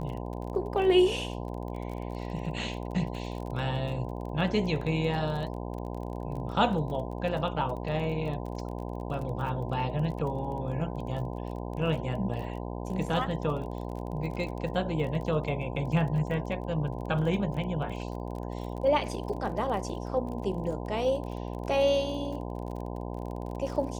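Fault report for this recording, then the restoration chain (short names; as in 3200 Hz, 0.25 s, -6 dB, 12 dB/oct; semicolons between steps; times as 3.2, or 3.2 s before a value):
buzz 60 Hz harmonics 17 -36 dBFS
crackle 29/s -37 dBFS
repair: de-click; de-hum 60 Hz, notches 17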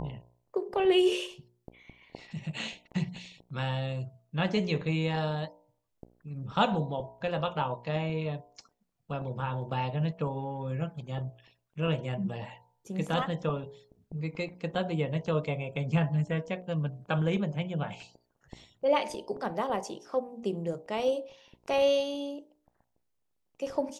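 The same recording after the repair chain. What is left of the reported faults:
none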